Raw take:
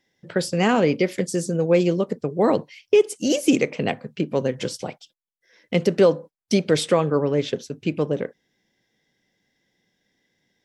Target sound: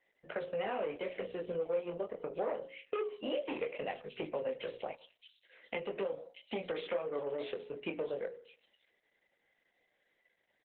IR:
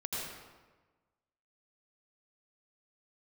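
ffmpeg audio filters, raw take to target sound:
-filter_complex "[0:a]asettb=1/sr,asplit=3[a][b][c];[a]atrim=end=4.314[d];[b]atrim=start=4.31:end=6.76,asetpts=PTS-STARTPTS,afade=t=in:d=0.004:c=qsin,afade=t=out:st=2.446:d=0.004:c=qsin,acrossover=split=320|3000[e][f][g];[f]acompressor=threshold=-27dB:ratio=2[h];[e][h][g]amix=inputs=3:normalize=0[i];[c]atrim=start=6.756[j];[d][i]acrossfade=d=0.004:c1=hsin:c2=qsin[k];[k][j]acrossfade=d=0.004:c1=qsin:c2=hsin,asoftclip=type=tanh:threshold=-13.5dB,firequalizer=gain_entry='entry(120,0);entry(490,8);entry(950,0);entry(1400,-2);entry(2900,4);entry(5100,-11)':delay=0.05:min_phase=1,acrossover=split=4200[l][m];[m]adelay=620[n];[l][n]amix=inputs=2:normalize=0,flanger=delay=18.5:depth=5.2:speed=0.2,highpass=92,acrossover=split=600 3100:gain=0.141 1 0.112[o][p][q];[o][p][q]amix=inputs=3:normalize=0,bandreject=f=60:t=h:w=6,bandreject=f=120:t=h:w=6,bandreject=f=180:t=h:w=6,bandreject=f=240:t=h:w=6,bandreject=f=300:t=h:w=6,bandreject=f=360:t=h:w=6,bandreject=f=420:t=h:w=6,bandreject=f=480:t=h:w=6,bandreject=f=540:t=h:w=6,acompressor=threshold=-38dB:ratio=4,flanger=delay=9.2:depth=7.3:regen=-86:speed=0.77:shape=sinusoidal,volume=8dB" -ar 48000 -c:a libopus -b:a 8k

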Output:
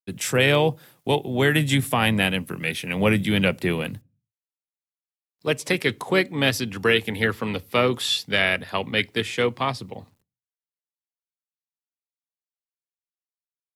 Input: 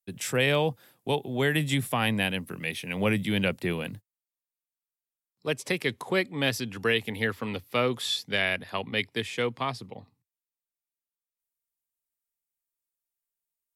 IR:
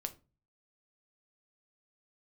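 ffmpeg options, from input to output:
-filter_complex "[0:a]asplit=2[a][b];[b]asetrate=35002,aresample=44100,atempo=1.25992,volume=-15dB[c];[a][c]amix=inputs=2:normalize=0,acrusher=bits=11:mix=0:aa=0.000001,asplit=2[d][e];[1:a]atrim=start_sample=2205,afade=t=out:st=0.38:d=0.01,atrim=end_sample=17199[f];[e][f]afir=irnorm=-1:irlink=0,volume=-12.5dB[g];[d][g]amix=inputs=2:normalize=0,volume=4dB"

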